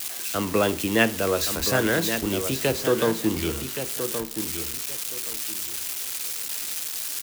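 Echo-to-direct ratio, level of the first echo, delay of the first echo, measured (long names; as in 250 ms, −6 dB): −8.5 dB, −8.5 dB, 1,122 ms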